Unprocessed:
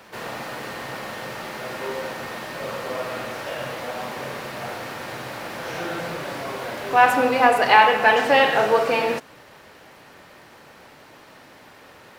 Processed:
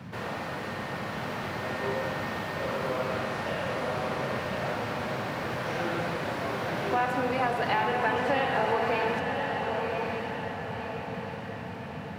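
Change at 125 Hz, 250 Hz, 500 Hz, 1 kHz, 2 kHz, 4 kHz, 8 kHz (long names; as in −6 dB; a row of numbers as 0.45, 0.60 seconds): +4.5, −2.0, −6.0, −8.5, −8.0, −8.5, −9.0 decibels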